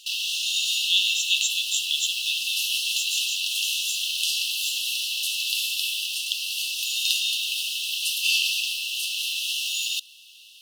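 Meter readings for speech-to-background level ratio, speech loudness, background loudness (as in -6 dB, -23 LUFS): -3.0 dB, -27.0 LUFS, -24.0 LUFS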